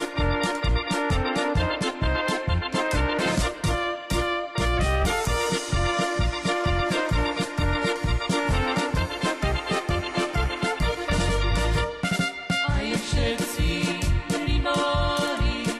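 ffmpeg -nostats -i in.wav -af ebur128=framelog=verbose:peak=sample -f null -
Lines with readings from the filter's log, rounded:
Integrated loudness:
  I:         -24.9 LUFS
  Threshold: -34.9 LUFS
Loudness range:
  LRA:         0.9 LU
  Threshold: -44.9 LUFS
  LRA low:   -25.3 LUFS
  LRA high:  -24.5 LUFS
Sample peak:
  Peak:      -13.5 dBFS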